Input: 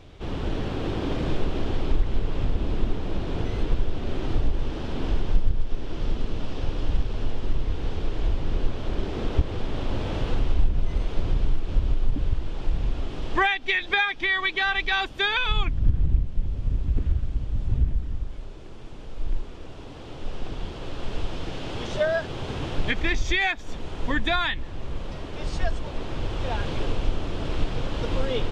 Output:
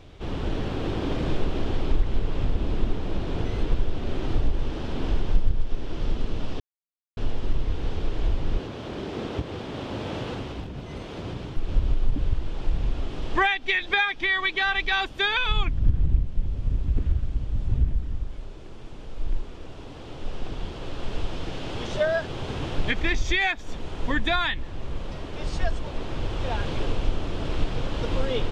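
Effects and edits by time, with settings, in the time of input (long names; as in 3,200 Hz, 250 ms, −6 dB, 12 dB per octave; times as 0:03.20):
0:06.60–0:07.17: silence
0:08.58–0:11.57: high-pass filter 120 Hz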